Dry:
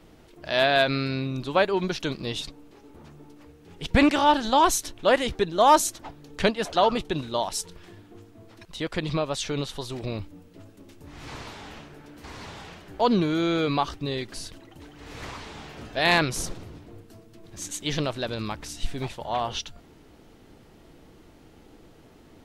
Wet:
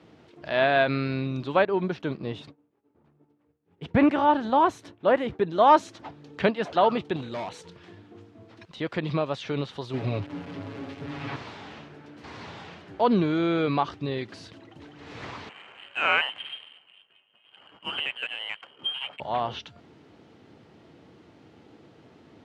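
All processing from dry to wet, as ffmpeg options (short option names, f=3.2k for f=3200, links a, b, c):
-filter_complex "[0:a]asettb=1/sr,asplit=3[a][b][c];[a]atrim=end=1.654[d];[b]atrim=start=1.65:end=5.51,asetpts=PTS-STARTPTS,afade=t=in:d=0.004:c=qsin,afade=t=out:st=3.856:d=0.004:c=qsin,agate=range=-33dB:threshold=-38dB:ratio=3:release=100:detection=peak,equalizer=f=5.3k:t=o:w=2.2:g=-12[e];[c]atrim=start=5.506[f];[d][e]acrossfade=d=0.004:c1=hsin:c2=qsin[g];[g][f]acrossfade=d=0.004:c1=qsin:c2=hsin,asettb=1/sr,asplit=3[h][i][j];[h]atrim=end=7.164[k];[i]atrim=start=7.16:end=7.62,asetpts=PTS-STARTPTS,afade=t=in:d=0.004:c=qsin,afade=t=out:st=0.456:d=0.004:c=qsin,aeval=exprs='val(0)+0.00447*sin(2*PI*490*n/s)':c=same,asuperstop=centerf=5100:order=4:qfactor=5,asoftclip=type=hard:threshold=-30dB[l];[j]atrim=start=7.616[m];[k][l]acrossfade=d=0.004:c1=hsin:c2=qsin[n];[n][m]acrossfade=d=0.004:c1=qsin:c2=hsin,asettb=1/sr,asplit=3[o][p][q];[o]atrim=end=9.934[r];[p]atrim=start=9.93:end=11.36,asetpts=PTS-STARTPTS,afade=t=in:d=0.004:c=qsin,afade=t=out:st=1.426:d=0.004:c=qsin,aeval=exprs='val(0)+0.5*0.0178*sgn(val(0))':c=same,acrossover=split=4200[s][t];[t]acompressor=threshold=-56dB:ratio=4:attack=1:release=60[u];[s][u]amix=inputs=2:normalize=0,aecho=1:1:7.2:0.74,atrim=end_sample=63063[v];[q]atrim=start=11.356[w];[r][v]acrossfade=d=0.004:c1=hsin:c2=qsin[x];[x][w]acrossfade=d=0.004:c1=qsin:c2=hsin,asettb=1/sr,asplit=3[y][z][aa];[y]atrim=end=15.494[ab];[z]atrim=start=15.49:end=19.2,asetpts=PTS-STARTPTS,afade=t=in:d=0.004:c=qsin,afade=t=out:st=3.706:d=0.004:c=qsin,lowpass=f=2.7k:t=q:w=0.5098,lowpass=f=2.7k:t=q:w=0.6013,lowpass=f=2.7k:t=q:w=0.9,lowpass=f=2.7k:t=q:w=2.563,afreqshift=-3200,adynamicsmooth=sensitivity=6.5:basefreq=940[ac];[aa]atrim=start=19.196[ad];[ab][ac]acrossfade=d=0.004:c1=hsin:c2=qsin[ae];[ae][ad]acrossfade=d=0.004:c1=qsin:c2=hsin,lowpass=4.5k,acrossover=split=3100[af][ag];[ag]acompressor=threshold=-47dB:ratio=4:attack=1:release=60[ah];[af][ah]amix=inputs=2:normalize=0,highpass=f=90:w=0.5412,highpass=f=90:w=1.3066"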